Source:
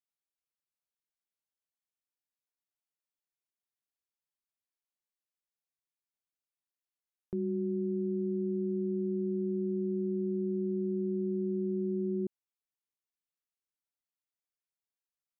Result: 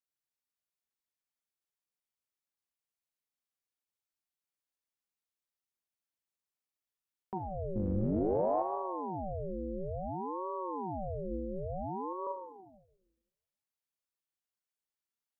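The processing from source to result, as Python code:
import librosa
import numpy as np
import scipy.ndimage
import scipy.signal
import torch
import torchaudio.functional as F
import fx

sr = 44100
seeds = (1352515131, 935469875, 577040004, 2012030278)

y = fx.octave_divider(x, sr, octaves=2, level_db=4.0, at=(7.75, 8.62))
y = fx.highpass(y, sr, hz=48.0, slope=12, at=(11.31, 12.13))
y = fx.rev_schroeder(y, sr, rt60_s=1.2, comb_ms=32, drr_db=3.0)
y = fx.ring_lfo(y, sr, carrier_hz=450.0, swing_pct=70, hz=0.57)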